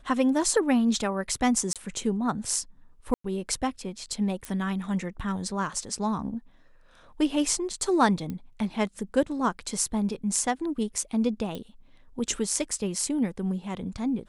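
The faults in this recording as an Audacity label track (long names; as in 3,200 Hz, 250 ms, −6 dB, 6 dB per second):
1.730000	1.760000	drop-out 27 ms
3.140000	3.240000	drop-out 104 ms
4.450000	4.450000	click −18 dBFS
8.300000	8.300000	click −22 dBFS
11.550000	11.550000	click −22 dBFS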